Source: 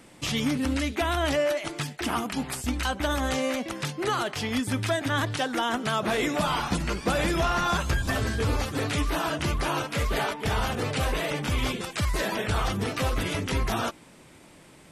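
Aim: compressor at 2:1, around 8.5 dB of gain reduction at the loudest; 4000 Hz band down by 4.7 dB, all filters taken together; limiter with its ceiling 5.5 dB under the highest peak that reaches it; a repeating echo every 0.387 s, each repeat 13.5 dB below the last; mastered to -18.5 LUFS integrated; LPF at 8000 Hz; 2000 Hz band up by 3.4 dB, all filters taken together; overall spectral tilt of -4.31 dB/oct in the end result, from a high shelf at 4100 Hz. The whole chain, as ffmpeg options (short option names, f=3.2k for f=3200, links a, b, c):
-af "lowpass=8k,equalizer=f=2k:t=o:g=7,equalizer=f=4k:t=o:g=-7,highshelf=f=4.1k:g=-5,acompressor=threshold=-37dB:ratio=2,alimiter=level_in=3.5dB:limit=-24dB:level=0:latency=1,volume=-3.5dB,aecho=1:1:387|774:0.211|0.0444,volume=18dB"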